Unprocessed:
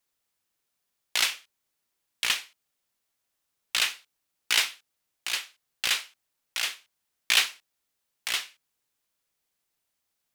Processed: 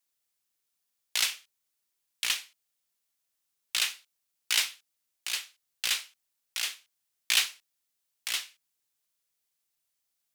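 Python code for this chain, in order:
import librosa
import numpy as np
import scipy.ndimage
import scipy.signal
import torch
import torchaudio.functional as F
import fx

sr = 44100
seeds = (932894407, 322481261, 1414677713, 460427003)

y = fx.high_shelf(x, sr, hz=2700.0, db=8.5)
y = y * librosa.db_to_amplitude(-8.0)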